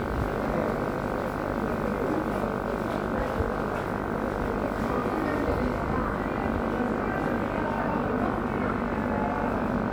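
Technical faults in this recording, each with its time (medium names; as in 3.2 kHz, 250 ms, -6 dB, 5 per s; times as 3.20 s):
buzz 50 Hz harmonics 31 -33 dBFS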